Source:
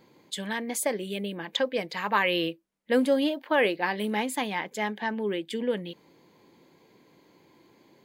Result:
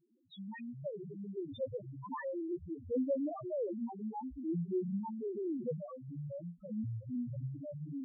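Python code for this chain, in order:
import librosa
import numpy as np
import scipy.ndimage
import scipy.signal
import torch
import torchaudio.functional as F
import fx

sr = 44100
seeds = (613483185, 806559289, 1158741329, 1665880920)

y = fx.cvsd(x, sr, bps=32000)
y = fx.echo_pitch(y, sr, ms=85, semitones=-7, count=3, db_per_echo=-3.0)
y = fx.spec_topn(y, sr, count=1)
y = y * 10.0 ** (-4.0 / 20.0)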